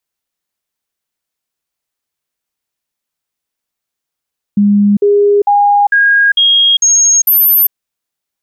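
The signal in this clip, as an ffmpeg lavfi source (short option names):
-f lavfi -i "aevalsrc='0.531*clip(min(mod(t,0.45),0.4-mod(t,0.45))/0.005,0,1)*sin(2*PI*204*pow(2,floor(t/0.45)/1)*mod(t,0.45))':d=3.15:s=44100"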